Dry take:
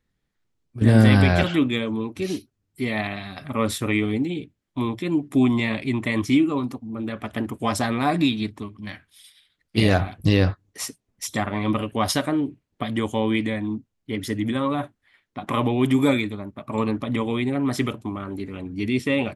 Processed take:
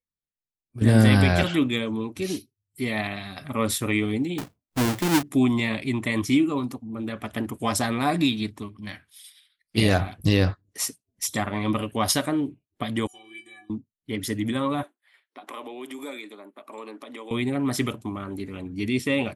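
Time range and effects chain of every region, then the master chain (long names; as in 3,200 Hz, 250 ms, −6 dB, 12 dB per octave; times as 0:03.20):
0:04.38–0:05.23: each half-wave held at its own peak + high-shelf EQ 7,200 Hz −4.5 dB
0:13.07–0:13.70: spectral tilt +2.5 dB per octave + stiff-string resonator 350 Hz, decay 0.41 s, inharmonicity 0.03
0:14.83–0:17.31: high-pass filter 310 Hz 24 dB per octave + downward compressor 2 to 1, threshold −41 dBFS
whole clip: noise reduction from a noise print of the clip's start 22 dB; high-shelf EQ 6,100 Hz +9 dB; level −2 dB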